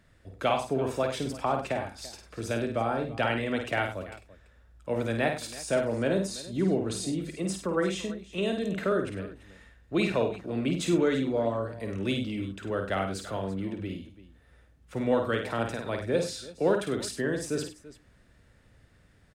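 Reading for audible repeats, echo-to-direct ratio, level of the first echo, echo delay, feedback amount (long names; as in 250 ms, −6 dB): 3, −4.5 dB, −5.5 dB, 52 ms, repeats not evenly spaced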